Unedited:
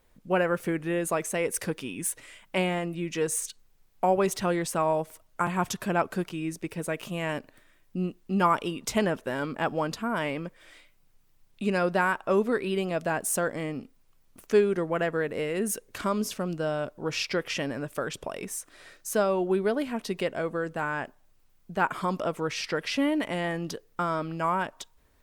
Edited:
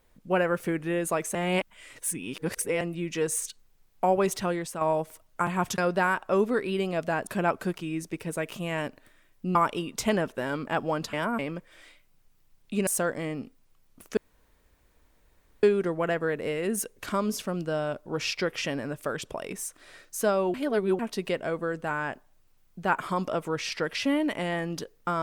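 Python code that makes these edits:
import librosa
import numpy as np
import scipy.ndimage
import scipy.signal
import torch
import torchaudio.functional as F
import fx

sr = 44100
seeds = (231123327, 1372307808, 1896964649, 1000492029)

y = fx.edit(x, sr, fx.reverse_span(start_s=1.35, length_s=1.46),
    fx.fade_out_to(start_s=4.34, length_s=0.47, floor_db=-8.0),
    fx.cut(start_s=8.06, length_s=0.38),
    fx.reverse_span(start_s=10.02, length_s=0.26),
    fx.move(start_s=11.76, length_s=1.49, to_s=5.78),
    fx.insert_room_tone(at_s=14.55, length_s=1.46),
    fx.reverse_span(start_s=19.46, length_s=0.45), tone=tone)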